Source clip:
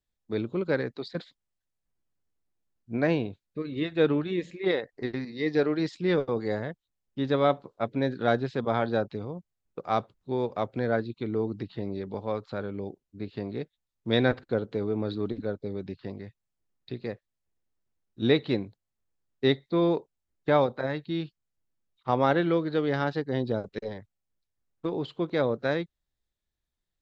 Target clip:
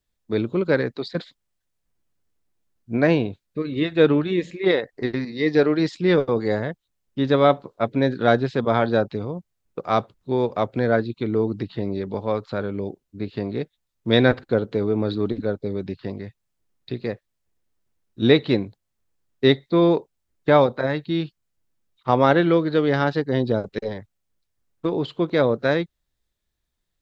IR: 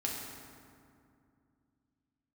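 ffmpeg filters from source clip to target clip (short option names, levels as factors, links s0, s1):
-af "bandreject=f=790:w=22,volume=2.24"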